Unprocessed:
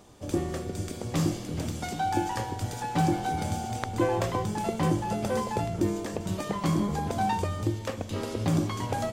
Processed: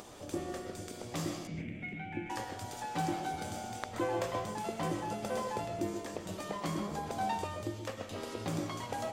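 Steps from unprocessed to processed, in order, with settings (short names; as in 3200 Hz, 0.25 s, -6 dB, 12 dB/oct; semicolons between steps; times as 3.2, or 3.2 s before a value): 1.47–2.3 EQ curve 100 Hz 0 dB, 160 Hz +8 dB, 1200 Hz -19 dB, 2200 Hz +9 dB, 4700 Hz -29 dB; upward compressor, threshold -32 dBFS; low shelf 220 Hz -10 dB; reverb RT60 0.35 s, pre-delay 85 ms, DRR 4.5 dB; gain -6 dB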